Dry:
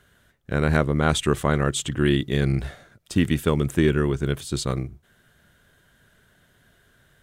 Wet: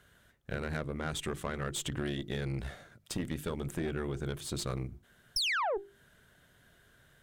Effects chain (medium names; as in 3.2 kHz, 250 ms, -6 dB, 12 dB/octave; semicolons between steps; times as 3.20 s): painted sound fall, 5.36–5.78 s, 360–5700 Hz -16 dBFS; compression 6:1, threshold -27 dBFS, peak gain reduction 12.5 dB; hum notches 50/100/150/200/250/300/350/400 Hz; valve stage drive 26 dB, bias 0.65